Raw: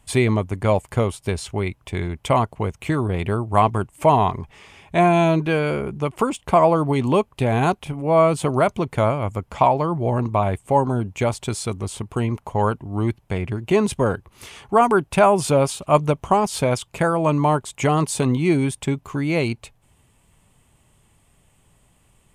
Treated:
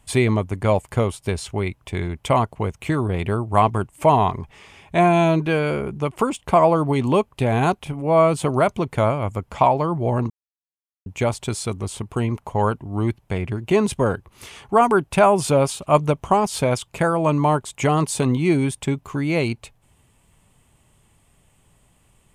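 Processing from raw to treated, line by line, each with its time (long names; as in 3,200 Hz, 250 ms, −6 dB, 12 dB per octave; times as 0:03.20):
0:10.30–0:11.06: silence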